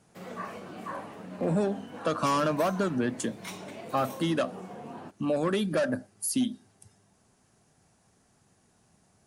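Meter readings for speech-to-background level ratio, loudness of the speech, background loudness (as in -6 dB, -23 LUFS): 13.5 dB, -29.5 LUFS, -43.0 LUFS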